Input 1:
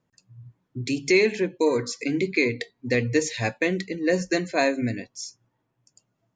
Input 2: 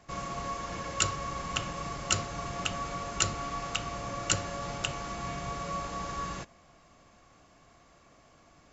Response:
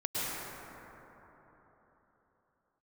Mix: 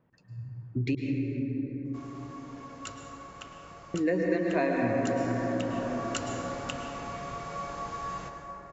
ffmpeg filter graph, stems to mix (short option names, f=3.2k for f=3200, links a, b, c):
-filter_complex "[0:a]lowpass=2k,volume=2dB,asplit=3[a][b][c];[a]atrim=end=0.95,asetpts=PTS-STARTPTS,afade=t=out:st=0.946:d=0.004:c=hsin[d];[b]atrim=start=0.95:end=3.94,asetpts=PTS-STARTPTS,volume=0[e];[c]atrim=start=3.94,asetpts=PTS-STARTPTS,afade=t=in:d=0.004:c=hsin[f];[d][e][f]concat=n=3:v=0:a=1,asplit=2[g][h];[h]volume=-3.5dB[i];[1:a]equalizer=f=830:w=0.37:g=5.5,adelay=1850,volume=-9dB,afade=t=in:st=4.15:d=0.63:silence=0.334965,asplit=2[j][k];[k]volume=-9dB[l];[2:a]atrim=start_sample=2205[m];[i][l]amix=inputs=2:normalize=0[n];[n][m]afir=irnorm=-1:irlink=0[o];[g][j][o]amix=inputs=3:normalize=0,acompressor=threshold=-28dB:ratio=3"